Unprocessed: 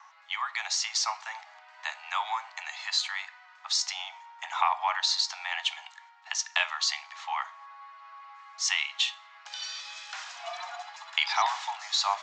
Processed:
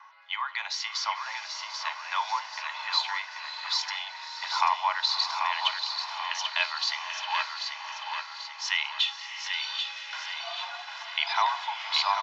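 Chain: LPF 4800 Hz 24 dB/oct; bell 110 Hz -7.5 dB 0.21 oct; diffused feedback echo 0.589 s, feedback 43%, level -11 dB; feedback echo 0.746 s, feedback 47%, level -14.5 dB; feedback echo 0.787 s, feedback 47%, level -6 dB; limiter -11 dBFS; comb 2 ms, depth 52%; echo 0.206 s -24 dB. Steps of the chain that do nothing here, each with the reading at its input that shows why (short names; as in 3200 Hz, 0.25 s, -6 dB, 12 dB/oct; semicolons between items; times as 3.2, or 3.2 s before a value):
bell 110 Hz: input band starts at 540 Hz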